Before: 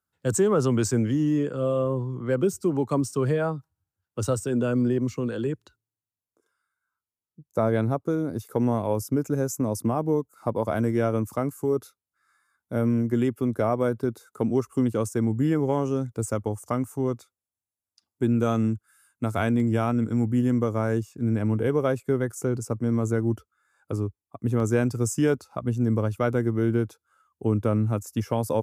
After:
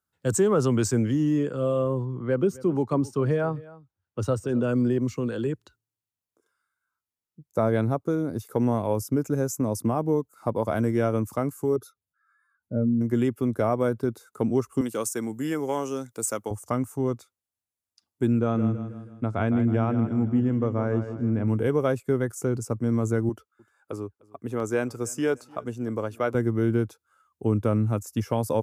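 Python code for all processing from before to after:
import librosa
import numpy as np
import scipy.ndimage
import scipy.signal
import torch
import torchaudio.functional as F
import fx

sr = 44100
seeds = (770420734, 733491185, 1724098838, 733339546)

y = fx.chain(x, sr, fx.high_shelf(hz=4500.0, db=-10.5),
    fx.notch(hz=7700.0, q=9.2),
    fx.echo_single(ms=263, db=-20.0), at=(2.05, 4.69))
y = fx.chain(y, sr, fx.spec_expand(power=1.9),
    fx.notch(hz=2000.0, q=14.0), at=(11.76, 13.01))
y = fx.chain(y, sr, fx.highpass(hz=170.0, slope=12),
    fx.tilt_eq(slope=2.5), at=(14.81, 16.51))
y = fx.chain(y, sr, fx.spacing_loss(db_at_10k=24),
    fx.echo_feedback(ms=160, feedback_pct=47, wet_db=-10.0), at=(18.39, 21.48))
y = fx.chain(y, sr, fx.highpass(hz=45.0, slope=12),
    fx.bass_treble(bass_db=-12, treble_db=-3),
    fx.echo_feedback(ms=302, feedback_pct=45, wet_db=-24.0), at=(23.29, 26.35))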